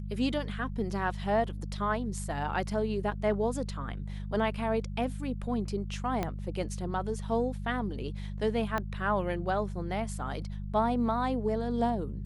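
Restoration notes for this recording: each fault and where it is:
mains hum 50 Hz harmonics 4 −37 dBFS
0:06.23: click −17 dBFS
0:08.78: click −18 dBFS

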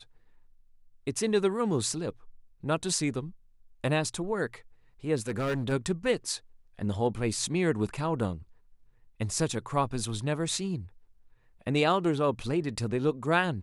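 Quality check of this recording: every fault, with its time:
0:05.17–0:05.73: clipping −26 dBFS

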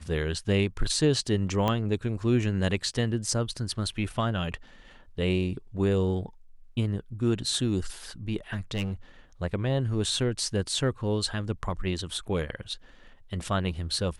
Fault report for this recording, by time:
0:01.68: click −13 dBFS
0:08.52–0:08.92: clipping −25 dBFS

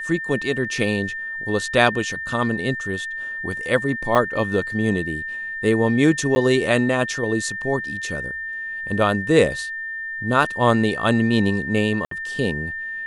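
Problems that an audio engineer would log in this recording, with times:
whistle 1,800 Hz −27 dBFS
0:04.15: drop-out 4.2 ms
0:06.35–0:06.36: drop-out 10 ms
0:12.05–0:12.11: drop-out 63 ms

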